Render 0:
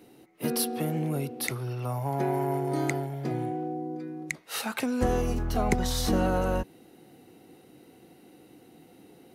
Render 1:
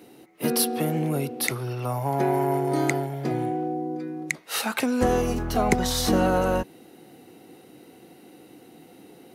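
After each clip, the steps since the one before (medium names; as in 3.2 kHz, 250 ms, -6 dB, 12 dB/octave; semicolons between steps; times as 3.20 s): bass shelf 97 Hz -9.5 dB; trim +5.5 dB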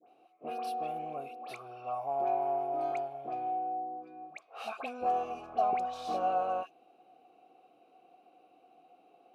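vowel filter a; phase dispersion highs, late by 80 ms, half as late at 1.4 kHz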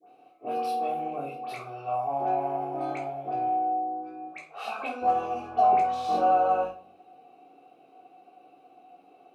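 simulated room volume 380 m³, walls furnished, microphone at 3.5 m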